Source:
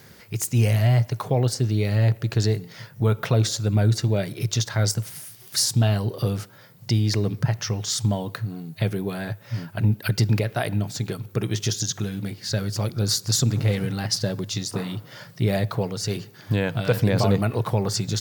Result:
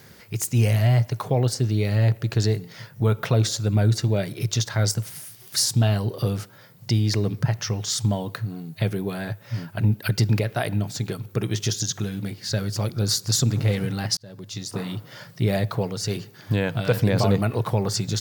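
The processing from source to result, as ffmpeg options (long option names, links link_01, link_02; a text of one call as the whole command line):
ffmpeg -i in.wav -filter_complex "[0:a]asplit=2[link_01][link_02];[link_01]atrim=end=14.17,asetpts=PTS-STARTPTS,afade=type=out:start_time=14.166:duration=0.004:curve=hsin[link_03];[link_02]atrim=start=14.17,asetpts=PTS-STARTPTS,afade=type=in:duration=0.73[link_04];[link_03][link_04]concat=n=2:v=0:a=1" out.wav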